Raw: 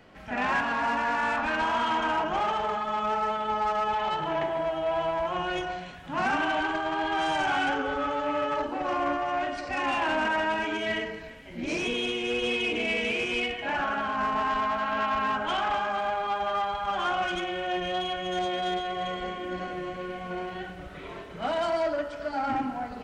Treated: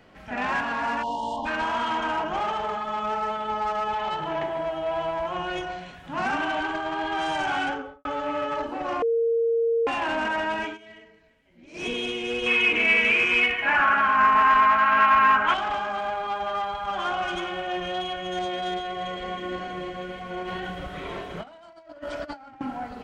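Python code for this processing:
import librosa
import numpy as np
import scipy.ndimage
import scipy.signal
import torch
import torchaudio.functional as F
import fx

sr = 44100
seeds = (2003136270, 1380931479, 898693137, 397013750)

y = fx.spec_erase(x, sr, start_s=1.03, length_s=0.43, low_hz=1100.0, high_hz=2800.0)
y = fx.studio_fade_out(y, sr, start_s=7.62, length_s=0.43)
y = fx.band_shelf(y, sr, hz=1600.0, db=11.0, octaves=1.7, at=(12.46, 15.54))
y = fx.echo_throw(y, sr, start_s=16.58, length_s=0.63, ms=400, feedback_pct=40, wet_db=-9.0)
y = fx.echo_throw(y, sr, start_s=18.84, length_s=0.42, ms=320, feedback_pct=80, wet_db=-5.5)
y = fx.over_compress(y, sr, threshold_db=-36.0, ratio=-0.5, at=(20.43, 22.61))
y = fx.edit(y, sr, fx.bleep(start_s=9.02, length_s=0.85, hz=461.0, db=-19.5),
    fx.fade_down_up(start_s=10.65, length_s=1.21, db=-18.0, fade_s=0.13), tone=tone)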